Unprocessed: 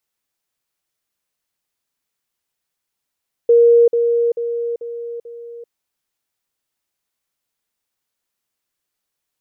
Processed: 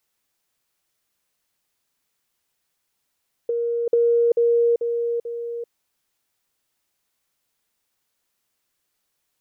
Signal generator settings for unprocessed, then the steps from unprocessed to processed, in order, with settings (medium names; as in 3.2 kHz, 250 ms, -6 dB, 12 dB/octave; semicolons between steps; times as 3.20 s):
level ladder 470 Hz -7 dBFS, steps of -6 dB, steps 5, 0.39 s 0.05 s
compressor with a negative ratio -19 dBFS, ratio -1